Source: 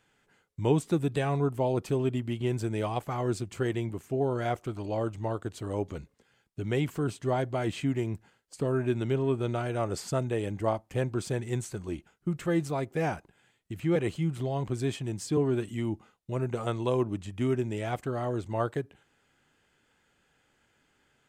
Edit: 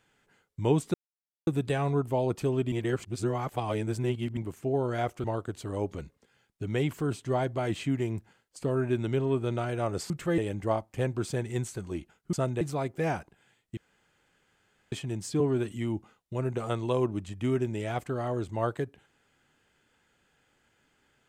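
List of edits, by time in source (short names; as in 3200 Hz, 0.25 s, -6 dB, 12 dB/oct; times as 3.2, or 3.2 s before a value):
0.94 insert silence 0.53 s
2.19–3.84 reverse
4.71–5.21 cut
10.07–10.35 swap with 12.3–12.58
13.74–14.89 room tone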